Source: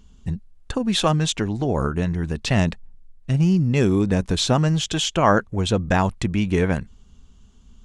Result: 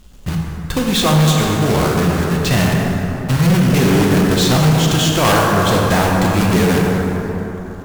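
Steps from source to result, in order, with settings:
one scale factor per block 3 bits
dense smooth reverb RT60 3.6 s, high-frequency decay 0.45×, DRR −1.5 dB
sine wavefolder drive 9 dB, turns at 0.5 dBFS
level −8.5 dB

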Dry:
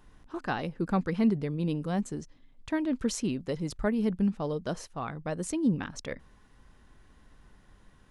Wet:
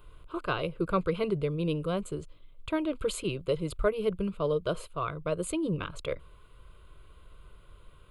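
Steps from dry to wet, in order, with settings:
phaser with its sweep stopped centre 1,200 Hz, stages 8
level +6 dB

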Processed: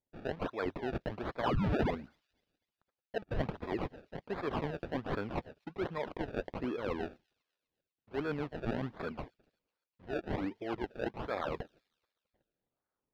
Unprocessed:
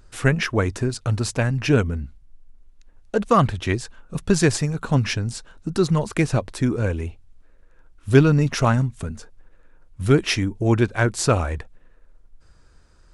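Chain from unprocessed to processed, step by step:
noise gate −42 dBFS, range −29 dB
high-pass filter 460 Hz 12 dB per octave
reversed playback
downward compressor 16 to 1, threshold −35 dBFS, peak gain reduction 22.5 dB
reversed playback
sound drawn into the spectrogram fall, 0:01.43–0:01.91, 2,000–5,500 Hz −34 dBFS
sample-and-hold swept by an LFO 29×, swing 100% 1.3 Hz
high-frequency loss of the air 330 metres
on a send: delay with a high-pass on its return 249 ms, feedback 46%, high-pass 5,400 Hz, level −18 dB
on the sum: level +4 dB

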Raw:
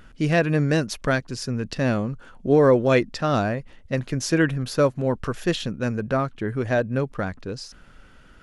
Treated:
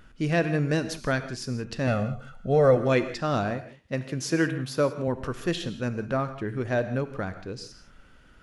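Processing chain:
0:01.87–0:02.77: comb filter 1.5 ms, depth 85%
0:03.51–0:05.08: high-pass filter 110 Hz
reverb whose tail is shaped and stops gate 200 ms flat, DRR 10 dB
level −4.5 dB

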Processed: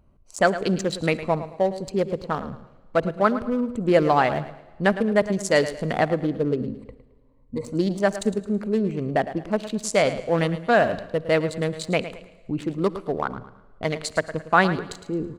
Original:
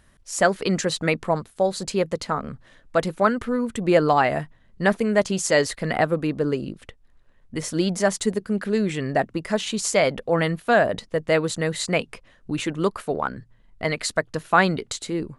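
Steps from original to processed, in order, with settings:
adaptive Wiener filter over 25 samples
0:06.59–0:07.65: EQ curve with evenly spaced ripples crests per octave 0.98, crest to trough 15 dB
repeating echo 109 ms, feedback 32%, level −13 dB
on a send at −20.5 dB: convolution reverb RT60 1.6 s, pre-delay 49 ms

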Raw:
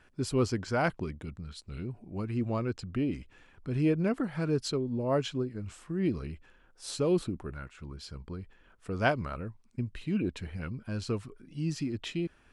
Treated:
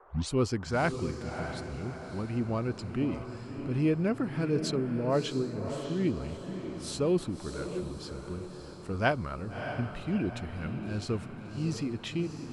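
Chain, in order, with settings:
turntable start at the beginning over 0.31 s
noise in a band 350–1,300 Hz −58 dBFS
feedback delay with all-pass diffusion 625 ms, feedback 49%, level −8 dB

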